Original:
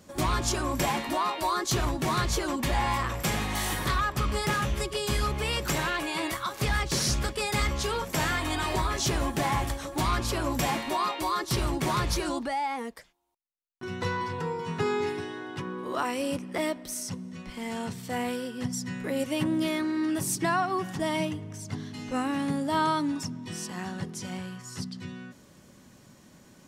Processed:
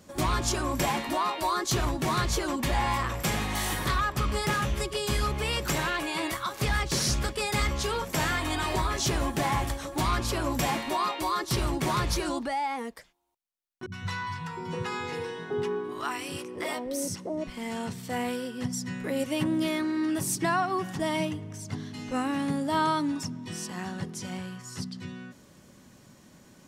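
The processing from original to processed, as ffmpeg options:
ffmpeg -i in.wav -filter_complex "[0:a]asettb=1/sr,asplit=3[link_01][link_02][link_03];[link_01]atrim=end=13.864[link_04];[link_02]atrim=start=13.86:end=17.47,asetpts=PTS-STARTPTS,afade=type=in:duration=0.004:curve=qsin,afade=type=out:start_time=3.606:duration=0.004:curve=qsin,acrossover=split=210|780[link_05][link_06][link_07];[link_07]adelay=60[link_08];[link_06]adelay=710[link_09];[link_05][link_09][link_08]amix=inputs=3:normalize=0,atrim=end_sample=159201[link_10];[link_03]atrim=start=17.466[link_11];[link_04][link_10]acrossfade=duration=0.004:curve1=hsin:curve2=qsin[link_12];[link_12][link_11]acrossfade=duration=0.004:curve1=qsin:curve2=hsin" out.wav

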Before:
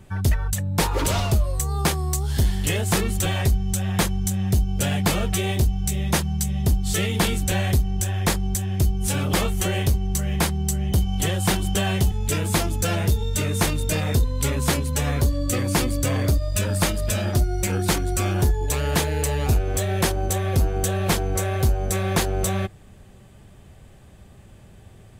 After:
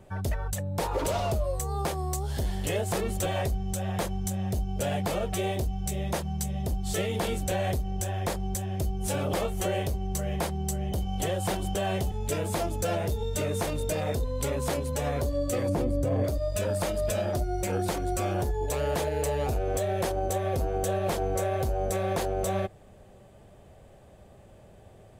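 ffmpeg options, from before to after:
ffmpeg -i in.wav -filter_complex "[0:a]asplit=3[link_01][link_02][link_03];[link_01]afade=type=out:start_time=15.68:duration=0.02[link_04];[link_02]tiltshelf=frequency=860:gain=8,afade=type=in:start_time=15.68:duration=0.02,afade=type=out:start_time=16.23:duration=0.02[link_05];[link_03]afade=type=in:start_time=16.23:duration=0.02[link_06];[link_04][link_05][link_06]amix=inputs=3:normalize=0,equalizer=frequency=590:width=1.1:gain=12,alimiter=limit=-11.5dB:level=0:latency=1:release=123,volume=-7.5dB" out.wav

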